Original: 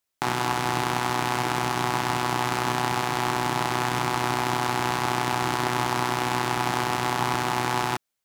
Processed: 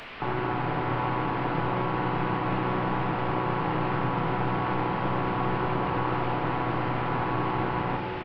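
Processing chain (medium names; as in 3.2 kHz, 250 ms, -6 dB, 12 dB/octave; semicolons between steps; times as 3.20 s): one-bit delta coder 16 kbps, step -36 dBFS; harmony voices -3 st -10 dB, +7 st -11 dB; simulated room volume 200 m³, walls hard, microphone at 0.36 m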